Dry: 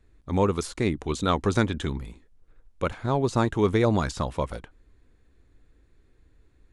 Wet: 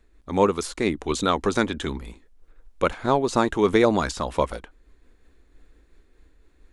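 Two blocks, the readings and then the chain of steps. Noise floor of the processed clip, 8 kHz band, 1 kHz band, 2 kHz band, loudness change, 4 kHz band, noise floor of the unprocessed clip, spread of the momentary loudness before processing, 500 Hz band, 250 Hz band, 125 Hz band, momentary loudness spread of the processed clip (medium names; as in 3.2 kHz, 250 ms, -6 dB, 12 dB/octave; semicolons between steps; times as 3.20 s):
-60 dBFS, +4.5 dB, +4.5 dB, +4.5 dB, +2.5 dB, +4.0 dB, -61 dBFS, 10 LU, +4.0 dB, +2.0 dB, -5.5 dB, 10 LU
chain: peaking EQ 110 Hz -13.5 dB 1.1 oct; random flutter of the level, depth 55%; trim +7.5 dB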